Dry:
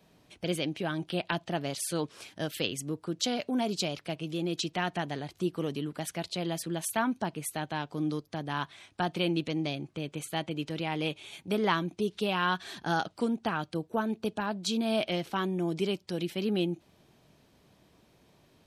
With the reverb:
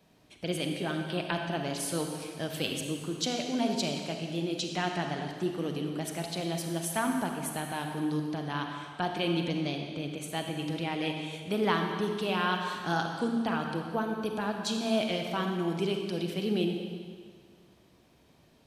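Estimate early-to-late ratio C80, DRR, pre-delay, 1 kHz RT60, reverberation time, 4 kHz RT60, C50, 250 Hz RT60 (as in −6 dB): 5.0 dB, 3.0 dB, 33 ms, 1.9 s, 1.9 s, 1.8 s, 3.5 dB, 1.9 s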